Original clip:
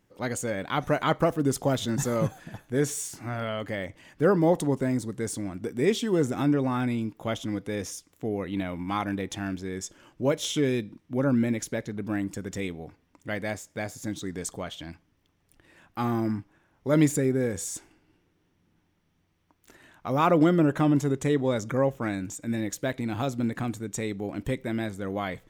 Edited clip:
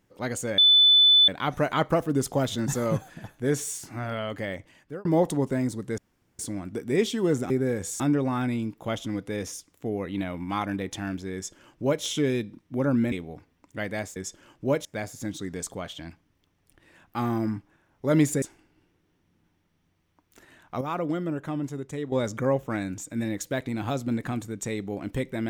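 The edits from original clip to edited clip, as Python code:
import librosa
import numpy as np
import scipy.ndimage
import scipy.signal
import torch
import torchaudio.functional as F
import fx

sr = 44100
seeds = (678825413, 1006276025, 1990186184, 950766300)

y = fx.edit(x, sr, fx.insert_tone(at_s=0.58, length_s=0.7, hz=3500.0, db=-13.5),
    fx.fade_out_span(start_s=3.83, length_s=0.52),
    fx.insert_room_tone(at_s=5.28, length_s=0.41),
    fx.duplicate(start_s=9.73, length_s=0.69, to_s=13.67),
    fx.cut(start_s=11.51, length_s=1.12),
    fx.move(start_s=17.24, length_s=0.5, to_s=6.39),
    fx.clip_gain(start_s=20.13, length_s=1.31, db=-8.5), tone=tone)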